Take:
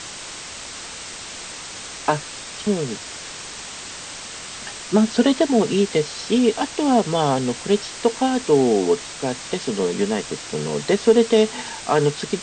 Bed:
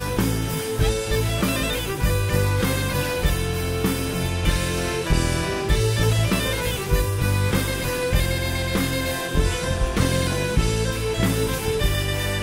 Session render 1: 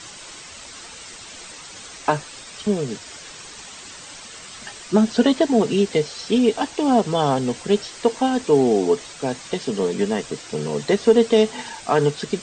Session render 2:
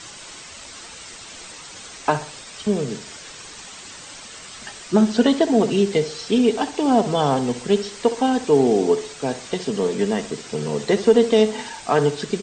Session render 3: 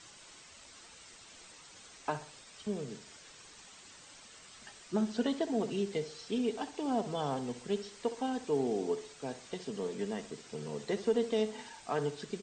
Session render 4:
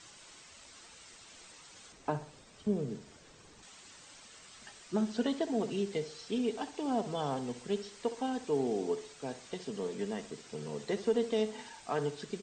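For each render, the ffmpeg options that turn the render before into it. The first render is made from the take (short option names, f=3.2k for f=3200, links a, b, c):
-af "afftdn=nr=8:nf=-35"
-filter_complex "[0:a]asplit=2[a][b];[b]adelay=65,lowpass=f=2k:p=1,volume=-12dB,asplit=2[c][d];[d]adelay=65,lowpass=f=2k:p=1,volume=0.41,asplit=2[e][f];[f]adelay=65,lowpass=f=2k:p=1,volume=0.41,asplit=2[g][h];[h]adelay=65,lowpass=f=2k:p=1,volume=0.41[i];[a][c][e][g][i]amix=inputs=5:normalize=0"
-af "volume=-15.5dB"
-filter_complex "[0:a]asettb=1/sr,asplit=3[a][b][c];[a]atrim=end=1.924[d];[b]atrim=start=1.92:end=3.63,asetpts=PTS-STARTPTS,afade=t=in:d=0.004:c=qsin,afade=t=out:st=1.706:d=0.004:c=qsin,tiltshelf=f=800:g=6.5[e];[c]atrim=start=3.626[f];[d][e]acrossfade=d=0.004:c1=hsin:c2=qsin[g];[g][f]acrossfade=d=0.004:c1=qsin:c2=hsin"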